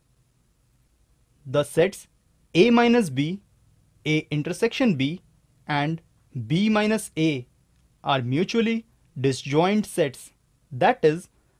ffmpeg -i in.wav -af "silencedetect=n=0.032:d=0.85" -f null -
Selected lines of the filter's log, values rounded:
silence_start: 0.00
silence_end: 1.50 | silence_duration: 1.50